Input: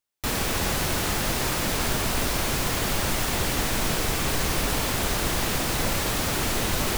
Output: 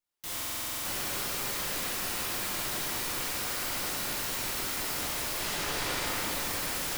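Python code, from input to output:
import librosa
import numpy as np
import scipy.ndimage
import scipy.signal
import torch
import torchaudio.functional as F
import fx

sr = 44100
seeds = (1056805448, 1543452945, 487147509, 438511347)

p1 = fx.steep_lowpass(x, sr, hz=4200.0, slope=36, at=(5.38, 6.06))
p2 = (np.mod(10.0 ** (27.0 / 20.0) * p1 + 1.0, 2.0) - 1.0) / 10.0 ** (27.0 / 20.0)
p3 = p2 + fx.echo_alternate(p2, sr, ms=209, hz=1800.0, feedback_pct=59, wet_db=-3, dry=0)
p4 = fx.room_shoebox(p3, sr, seeds[0], volume_m3=120.0, walls='hard', distance_m=0.87)
p5 = fx.buffer_glitch(p4, sr, at_s=(0.34,), block=2048, repeats=10)
y = p5 * 10.0 ** (-7.5 / 20.0)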